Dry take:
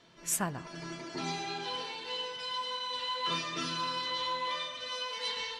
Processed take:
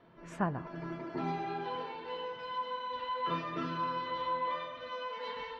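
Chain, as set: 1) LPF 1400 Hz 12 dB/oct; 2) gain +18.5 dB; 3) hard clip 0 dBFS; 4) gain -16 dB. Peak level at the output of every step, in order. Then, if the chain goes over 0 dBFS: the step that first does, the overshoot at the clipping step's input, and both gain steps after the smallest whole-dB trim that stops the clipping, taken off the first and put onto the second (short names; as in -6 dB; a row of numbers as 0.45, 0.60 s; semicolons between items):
-22.0, -3.5, -3.5, -19.5 dBFS; no overload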